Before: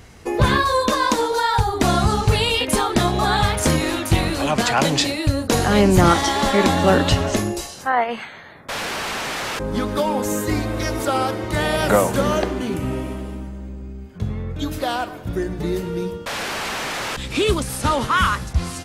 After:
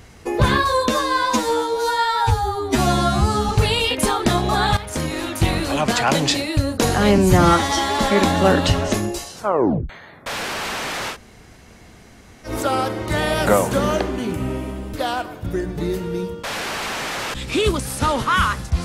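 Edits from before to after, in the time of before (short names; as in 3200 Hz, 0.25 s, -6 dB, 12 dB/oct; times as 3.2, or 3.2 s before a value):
0.89–2.19 stretch 2×
3.47–4.24 fade in, from -12 dB
5.88–6.43 stretch 1.5×
7.78 tape stop 0.54 s
9.56–10.91 room tone, crossfade 0.10 s
13.36–14.76 cut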